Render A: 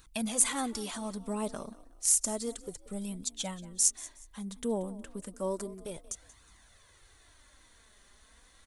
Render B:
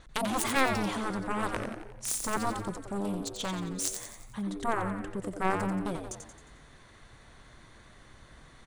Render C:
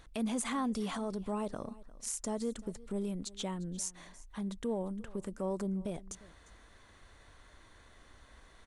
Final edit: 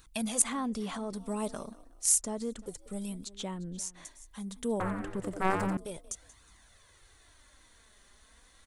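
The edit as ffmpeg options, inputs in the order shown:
-filter_complex "[2:a]asplit=3[a][b][c];[0:a]asplit=5[d][e][f][g][h];[d]atrim=end=0.422[i];[a]atrim=start=0.418:end=1.132[j];[e]atrim=start=1.128:end=2.212[k];[b]atrim=start=2.208:end=2.662[l];[f]atrim=start=2.658:end=3.252[m];[c]atrim=start=3.248:end=4.052[n];[g]atrim=start=4.048:end=4.802[o];[1:a]atrim=start=4.798:end=5.772[p];[h]atrim=start=5.768[q];[i][j]acrossfade=d=0.004:c1=hsin:c2=hsin[r];[r][k]acrossfade=d=0.004:c1=hsin:c2=hsin[s];[s][l]acrossfade=d=0.004:c1=hsin:c2=hsin[t];[t][m]acrossfade=d=0.004:c1=hsin:c2=hsin[u];[u][n]acrossfade=d=0.004:c1=hsin:c2=hsin[v];[v][o]acrossfade=d=0.004:c1=hsin:c2=hsin[w];[w][p]acrossfade=d=0.004:c1=hsin:c2=hsin[x];[x][q]acrossfade=d=0.004:c1=hsin:c2=hsin"

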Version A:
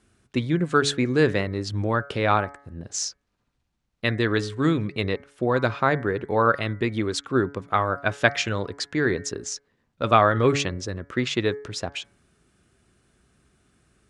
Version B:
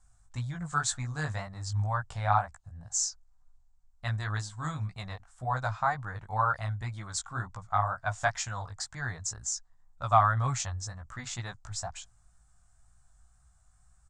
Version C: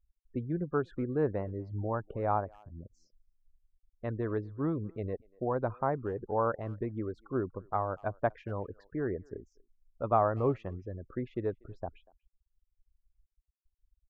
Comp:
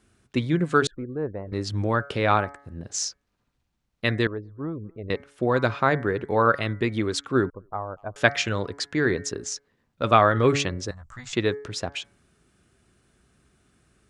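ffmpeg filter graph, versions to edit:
-filter_complex "[2:a]asplit=3[a][b][c];[0:a]asplit=5[d][e][f][g][h];[d]atrim=end=0.872[i];[a]atrim=start=0.868:end=1.522[j];[e]atrim=start=1.518:end=4.272[k];[b]atrim=start=4.268:end=5.102[l];[f]atrim=start=5.098:end=7.502[m];[c]atrim=start=7.498:end=8.162[n];[g]atrim=start=8.158:end=10.912[o];[1:a]atrim=start=10.908:end=11.332[p];[h]atrim=start=11.328[q];[i][j]acrossfade=d=0.004:c1=hsin:c2=hsin[r];[r][k]acrossfade=d=0.004:c1=hsin:c2=hsin[s];[s][l]acrossfade=d=0.004:c1=hsin:c2=hsin[t];[t][m]acrossfade=d=0.004:c1=hsin:c2=hsin[u];[u][n]acrossfade=d=0.004:c1=hsin:c2=hsin[v];[v][o]acrossfade=d=0.004:c1=hsin:c2=hsin[w];[w][p]acrossfade=d=0.004:c1=hsin:c2=hsin[x];[x][q]acrossfade=d=0.004:c1=hsin:c2=hsin"

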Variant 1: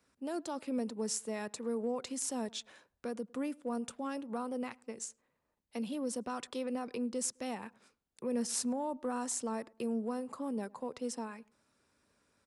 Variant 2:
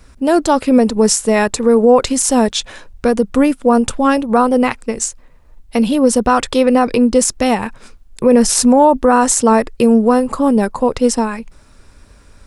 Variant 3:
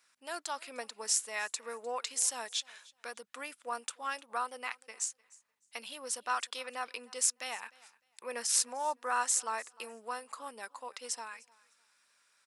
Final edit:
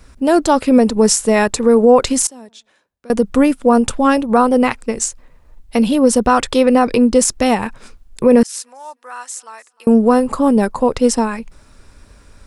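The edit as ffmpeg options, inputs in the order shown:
-filter_complex "[1:a]asplit=3[a][b][c];[a]atrim=end=2.272[d];[0:a]atrim=start=2.268:end=3.102[e];[b]atrim=start=3.098:end=8.432[f];[2:a]atrim=start=8.428:end=9.872[g];[c]atrim=start=9.868[h];[d][e]acrossfade=d=0.004:c1=hsin:c2=hsin[i];[i][f]acrossfade=d=0.004:c1=hsin:c2=hsin[j];[j][g]acrossfade=d=0.004:c1=hsin:c2=hsin[k];[k][h]acrossfade=d=0.004:c1=hsin:c2=hsin"

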